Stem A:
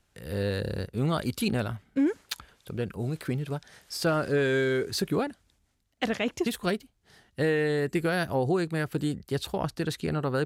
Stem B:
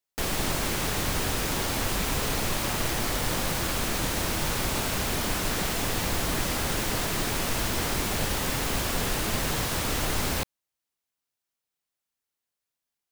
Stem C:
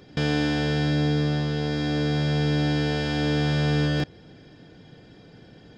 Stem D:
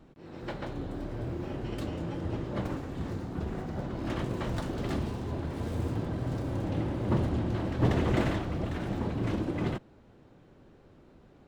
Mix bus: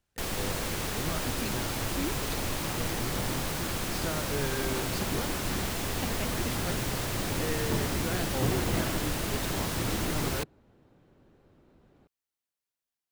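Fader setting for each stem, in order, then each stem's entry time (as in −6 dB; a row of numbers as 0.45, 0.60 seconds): −10.0 dB, −5.0 dB, muted, −4.5 dB; 0.00 s, 0.00 s, muted, 0.60 s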